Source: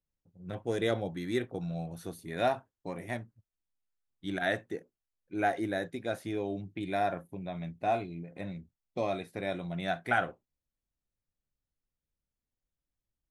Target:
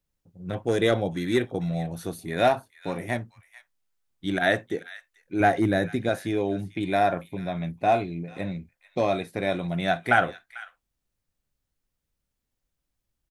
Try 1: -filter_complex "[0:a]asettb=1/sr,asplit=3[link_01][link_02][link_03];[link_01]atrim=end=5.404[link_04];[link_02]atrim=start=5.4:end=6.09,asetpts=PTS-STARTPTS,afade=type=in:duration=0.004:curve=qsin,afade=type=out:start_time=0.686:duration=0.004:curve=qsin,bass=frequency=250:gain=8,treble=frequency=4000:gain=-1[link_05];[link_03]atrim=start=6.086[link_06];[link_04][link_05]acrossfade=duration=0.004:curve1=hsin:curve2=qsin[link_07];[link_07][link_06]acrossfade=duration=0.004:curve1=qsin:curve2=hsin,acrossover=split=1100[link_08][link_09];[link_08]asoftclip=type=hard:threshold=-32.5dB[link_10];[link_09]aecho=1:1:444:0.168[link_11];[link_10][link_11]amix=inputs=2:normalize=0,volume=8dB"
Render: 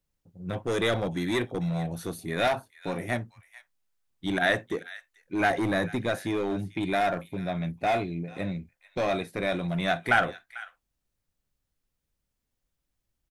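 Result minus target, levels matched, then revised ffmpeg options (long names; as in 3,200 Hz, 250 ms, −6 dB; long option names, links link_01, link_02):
hard clipping: distortion +19 dB
-filter_complex "[0:a]asettb=1/sr,asplit=3[link_01][link_02][link_03];[link_01]atrim=end=5.404[link_04];[link_02]atrim=start=5.4:end=6.09,asetpts=PTS-STARTPTS,afade=type=in:duration=0.004:curve=qsin,afade=type=out:start_time=0.686:duration=0.004:curve=qsin,bass=frequency=250:gain=8,treble=frequency=4000:gain=-1[link_05];[link_03]atrim=start=6.086[link_06];[link_04][link_05]acrossfade=duration=0.004:curve1=hsin:curve2=qsin[link_07];[link_07][link_06]acrossfade=duration=0.004:curve1=qsin:curve2=hsin,acrossover=split=1100[link_08][link_09];[link_08]asoftclip=type=hard:threshold=-22.5dB[link_10];[link_09]aecho=1:1:444:0.168[link_11];[link_10][link_11]amix=inputs=2:normalize=0,volume=8dB"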